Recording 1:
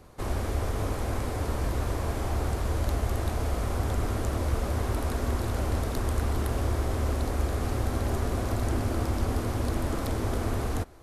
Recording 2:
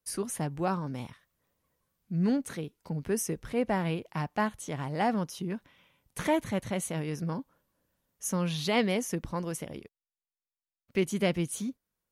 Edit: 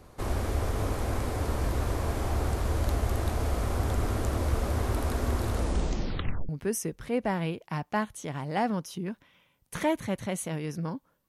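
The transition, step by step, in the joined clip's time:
recording 1
5.50 s: tape stop 0.99 s
6.49 s: go over to recording 2 from 2.93 s

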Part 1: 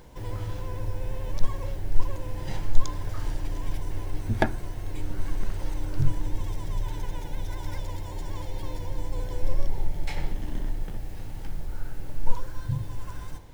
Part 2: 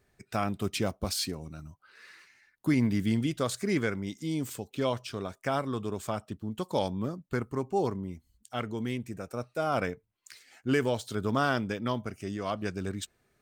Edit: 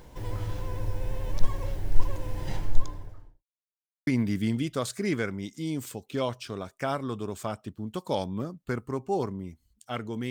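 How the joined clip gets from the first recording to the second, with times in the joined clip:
part 1
2.43–3.44 s: studio fade out
3.44–4.07 s: mute
4.07 s: go over to part 2 from 2.71 s

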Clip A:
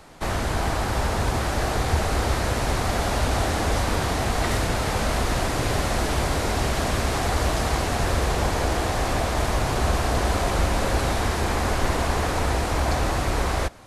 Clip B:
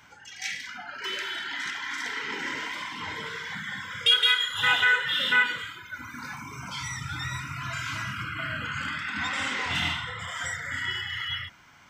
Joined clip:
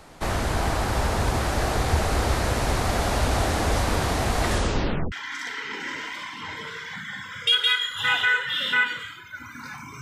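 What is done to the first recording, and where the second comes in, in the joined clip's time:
clip A
4.48 s: tape stop 0.64 s
5.12 s: go over to clip B from 1.71 s

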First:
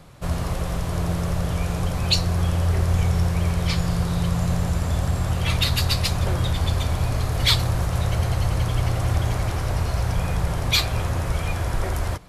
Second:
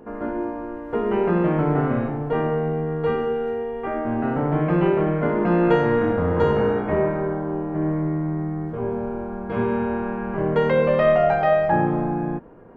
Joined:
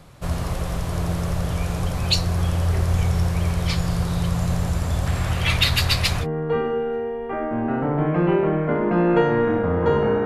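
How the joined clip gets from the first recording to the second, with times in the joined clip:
first
5.06–6.27 s: peaking EQ 2.2 kHz +7 dB 1.5 oct
6.23 s: go over to second from 2.77 s, crossfade 0.08 s

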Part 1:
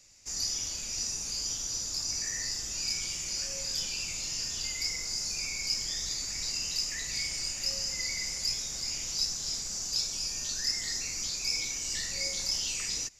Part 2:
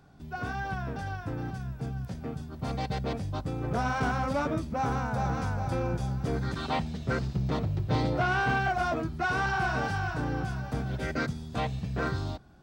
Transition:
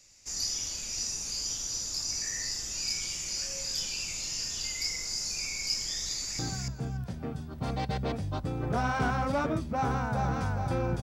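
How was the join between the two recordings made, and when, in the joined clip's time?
part 1
6.09–6.39 s: echo throw 290 ms, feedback 10%, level -4 dB
6.39 s: go over to part 2 from 1.40 s

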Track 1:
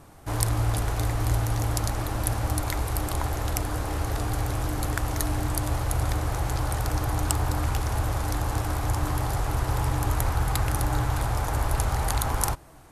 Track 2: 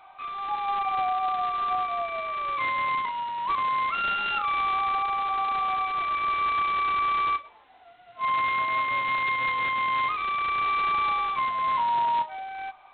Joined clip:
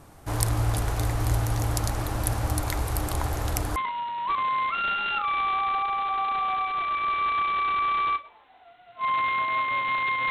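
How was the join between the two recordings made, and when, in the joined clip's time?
track 1
3.76 s: go over to track 2 from 2.96 s

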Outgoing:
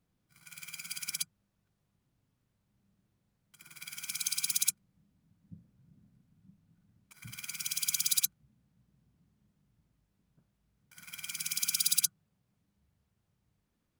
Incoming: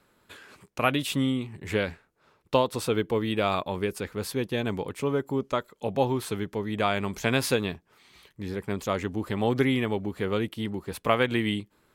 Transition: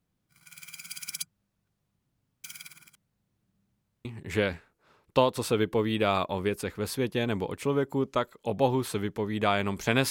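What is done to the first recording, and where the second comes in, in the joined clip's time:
outgoing
2.44–4.05 s: reverse
4.05 s: go over to incoming from 1.42 s

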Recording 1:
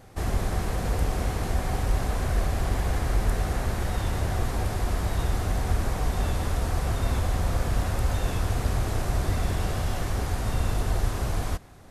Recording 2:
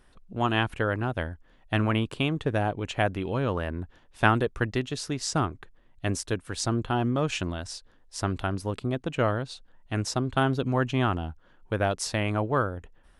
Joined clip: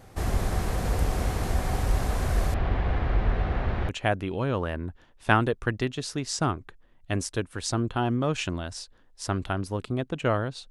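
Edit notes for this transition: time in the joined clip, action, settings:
recording 1
2.54–3.89 s: low-pass 3.3 kHz 24 dB/octave
3.89 s: go over to recording 2 from 2.83 s

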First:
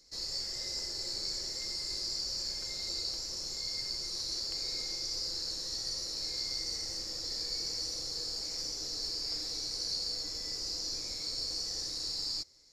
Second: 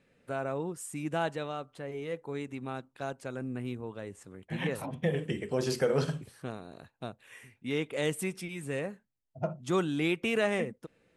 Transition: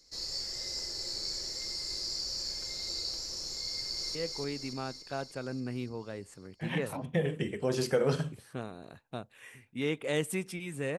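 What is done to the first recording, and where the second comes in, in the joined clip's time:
first
3.67–4.15 s: echo throw 290 ms, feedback 65%, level -4 dB
4.15 s: go over to second from 2.04 s

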